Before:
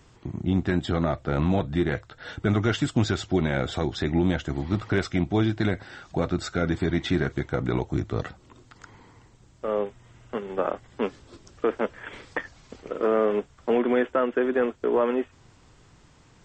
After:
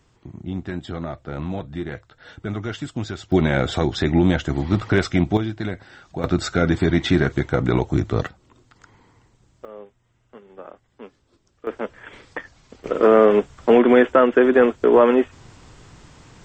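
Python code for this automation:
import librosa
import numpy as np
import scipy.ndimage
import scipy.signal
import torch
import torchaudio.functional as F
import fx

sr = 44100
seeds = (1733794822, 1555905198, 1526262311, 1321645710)

y = fx.gain(x, sr, db=fx.steps((0.0, -5.0), (3.32, 6.0), (5.37, -2.5), (6.24, 6.5), (8.27, -3.0), (9.65, -13.5), (11.67, -1.5), (12.84, 9.0)))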